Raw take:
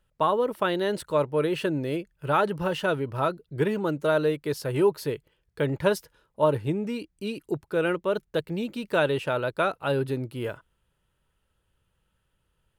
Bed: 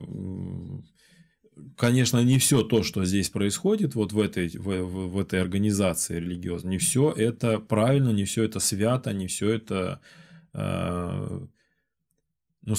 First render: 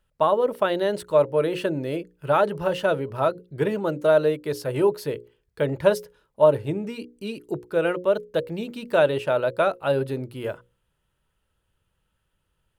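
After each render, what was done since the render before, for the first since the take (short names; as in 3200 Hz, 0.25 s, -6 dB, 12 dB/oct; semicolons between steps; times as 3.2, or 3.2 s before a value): notches 60/120/180/240/300/360/420/480/540 Hz; dynamic EQ 600 Hz, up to +7 dB, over -38 dBFS, Q 2.1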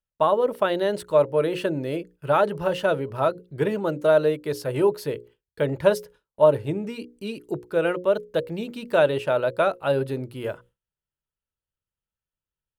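gate with hold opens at -45 dBFS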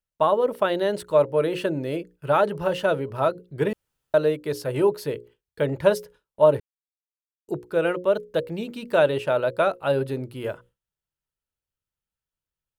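3.73–4.14 room tone; 6.6–7.48 mute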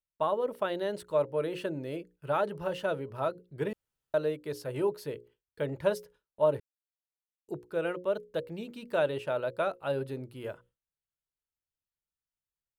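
gain -9 dB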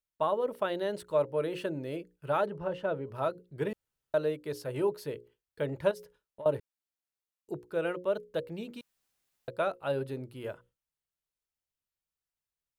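2.46–3.07 LPF 1400 Hz 6 dB/oct; 5.91–6.46 compressor 12:1, threshold -39 dBFS; 8.81–9.48 room tone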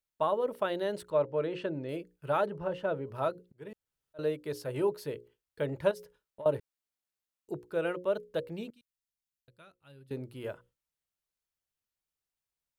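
1.1–1.89 air absorption 120 m; 3.34–4.19 auto swell 0.564 s; 8.7–10.11 passive tone stack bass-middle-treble 6-0-2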